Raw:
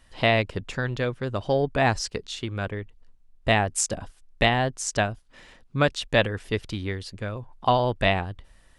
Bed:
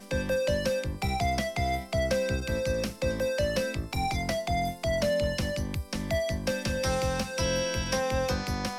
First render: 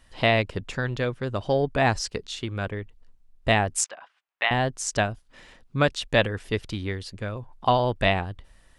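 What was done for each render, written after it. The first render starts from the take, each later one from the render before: 3.84–4.51 Butterworth band-pass 1600 Hz, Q 0.75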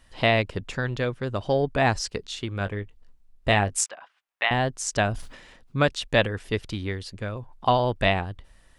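2.58–3.86 doubler 20 ms -11 dB; 4.97–5.78 sustainer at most 74 dB/s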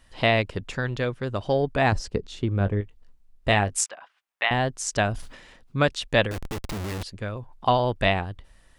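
1.92–2.81 tilt shelf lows +7.5 dB, about 880 Hz; 6.31–7.03 Schmitt trigger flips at -38 dBFS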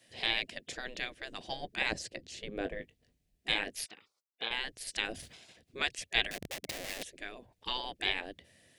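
band shelf 1100 Hz -14 dB 1 oct; spectral gate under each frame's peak -15 dB weak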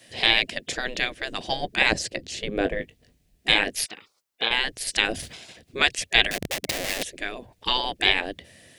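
gain +12 dB; limiter -2 dBFS, peak gain reduction 3 dB

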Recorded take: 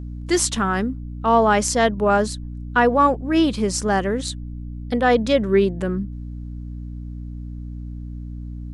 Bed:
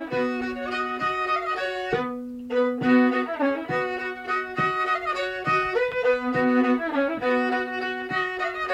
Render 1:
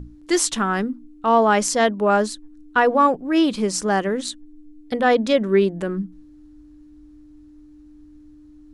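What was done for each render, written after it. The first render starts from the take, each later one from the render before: notches 60/120/180/240 Hz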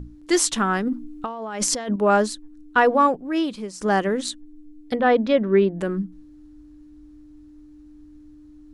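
0.76–1.96 negative-ratio compressor -27 dBFS; 2.87–3.81 fade out, to -16 dB; 4.95–5.78 air absorption 240 m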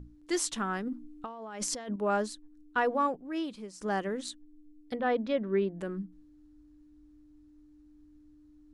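gain -11 dB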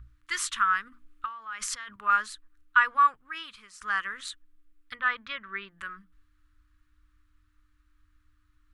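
EQ curve 110 Hz 0 dB, 160 Hz -18 dB, 310 Hz -23 dB, 720 Hz -20 dB, 1200 Hz +13 dB, 3400 Hz +6 dB, 5300 Hz -1 dB, 11000 Hz +2 dB

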